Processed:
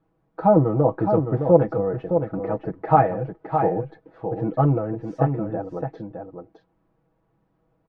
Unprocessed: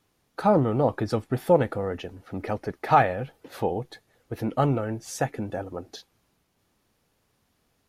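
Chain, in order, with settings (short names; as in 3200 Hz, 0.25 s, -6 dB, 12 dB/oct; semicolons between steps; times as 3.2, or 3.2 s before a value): LPF 1000 Hz 12 dB/oct; comb 6.2 ms, depth 83%; on a send: echo 0.613 s -6.5 dB; on the sum: gain +1.5 dB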